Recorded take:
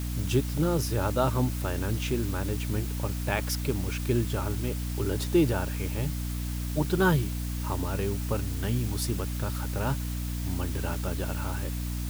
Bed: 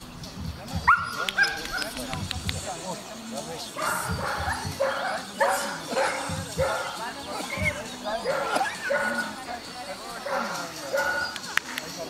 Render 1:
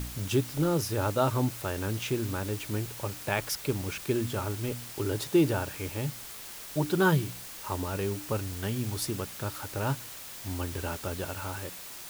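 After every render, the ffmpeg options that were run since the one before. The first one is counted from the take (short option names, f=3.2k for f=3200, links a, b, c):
-af "bandreject=f=60:t=h:w=4,bandreject=f=120:t=h:w=4,bandreject=f=180:t=h:w=4,bandreject=f=240:t=h:w=4,bandreject=f=300:t=h:w=4"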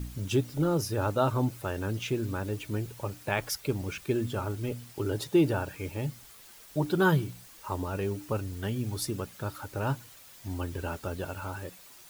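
-af "afftdn=nr=10:nf=-43"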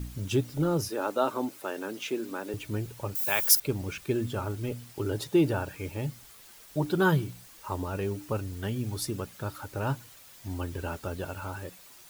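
-filter_complex "[0:a]asettb=1/sr,asplit=3[a][b][c];[a]atrim=end=0.894[d];[b]atrim=start=0.89:end=2.54,asetpts=PTS-STARTPTS,afade=t=in:d=0.004:c=qsin,afade=t=out:st=1.646:d=0.004:c=qsin,highpass=f=240:w=0.5412,highpass=f=240:w=1.3066[e];[c]atrim=start=2.536[f];[d][e]acrossfade=d=0.004:c1=hsin:c2=qsin[g];[g][f]acrossfade=d=0.004:c1=qsin:c2=hsin,asettb=1/sr,asplit=3[h][i][j];[h]atrim=end=3.154[k];[i]atrim=start=3.15:end=3.6,asetpts=PTS-STARTPTS,afade=t=in:d=0.004:c=qsin,afade=t=out:st=0.446:d=0.004:c=qsin,aemphasis=mode=production:type=riaa[l];[j]atrim=start=3.596[m];[k][l]acrossfade=d=0.004:c1=hsin:c2=qsin[n];[n][m]acrossfade=d=0.004:c1=qsin:c2=hsin"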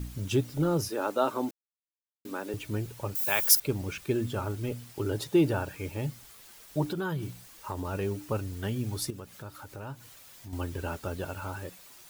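-filter_complex "[0:a]asettb=1/sr,asplit=3[a][b][c];[a]atrim=end=6.884[d];[b]atrim=start=6.88:end=7.85,asetpts=PTS-STARTPTS,afade=t=in:d=0.004:c=qsin,afade=t=out:st=0.966:d=0.004:c=qsin,acompressor=threshold=-29dB:ratio=5:attack=3.2:release=140:knee=1:detection=peak[e];[c]atrim=start=7.846[f];[d][e]acrossfade=d=0.004:c1=hsin:c2=qsin[g];[g][f]acrossfade=d=0.004:c1=qsin:c2=hsin,asettb=1/sr,asplit=3[h][i][j];[h]atrim=end=9.104[k];[i]atrim=start=9.1:end=10.53,asetpts=PTS-STARTPTS,afade=t=in:d=0.004:c=qsin,afade=t=out:st=1.426:d=0.004:c=qsin,acompressor=threshold=-45dB:ratio=2:attack=3.2:release=140:knee=1:detection=peak[l];[j]atrim=start=10.526[m];[k][l]acrossfade=d=0.004:c1=hsin:c2=qsin[n];[n][m]acrossfade=d=0.004:c1=qsin:c2=hsin,asplit=3[o][p][q];[o]atrim=end=1.51,asetpts=PTS-STARTPTS,afade=t=out:st=1.506:d=0.004:c=hsin[r];[p]atrim=start=1.51:end=2.25,asetpts=PTS-STARTPTS,volume=0[s];[q]atrim=start=2.25,asetpts=PTS-STARTPTS,afade=t=in:d=0.004:c=hsin[t];[r][s][t]concat=n=3:v=0:a=1"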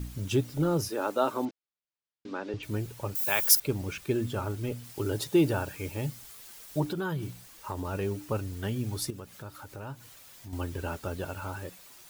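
-filter_complex "[0:a]asettb=1/sr,asplit=3[a][b][c];[a]atrim=end=1.454[d];[b]atrim=start=1.45:end=2.63,asetpts=PTS-STARTPTS,afade=t=in:d=0.004:c=qsin,afade=t=out:st=1.176:d=0.004:c=qsin,lowpass=f=5.3k:w=0.5412,lowpass=f=5.3k:w=1.3066[e];[c]atrim=start=2.626[f];[d][e]acrossfade=d=0.004:c1=hsin:c2=qsin[g];[g][f]acrossfade=d=0.004:c1=qsin:c2=hsin,asettb=1/sr,asplit=3[h][i][j];[h]atrim=end=4.844[k];[i]atrim=start=4.84:end=6.8,asetpts=PTS-STARTPTS,afade=t=in:d=0.004:c=qsin,afade=t=out:st=1.956:d=0.004:c=qsin,highshelf=f=4.2k:g=4.5[l];[j]atrim=start=6.796[m];[k][l]acrossfade=d=0.004:c1=hsin:c2=qsin[n];[n][m]acrossfade=d=0.004:c1=qsin:c2=hsin"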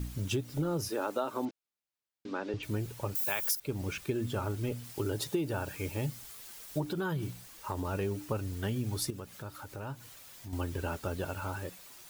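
-af "acompressor=threshold=-28dB:ratio=12"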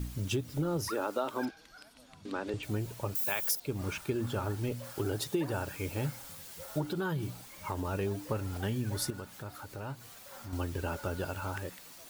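-filter_complex "[1:a]volume=-24dB[a];[0:a][a]amix=inputs=2:normalize=0"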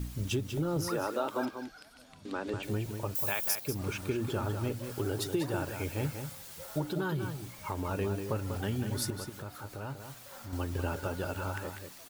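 -filter_complex "[0:a]asplit=2[a][b];[b]adelay=192.4,volume=-7dB,highshelf=f=4k:g=-4.33[c];[a][c]amix=inputs=2:normalize=0"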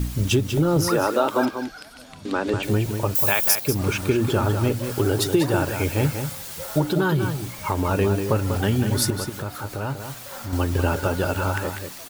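-af "volume=12dB"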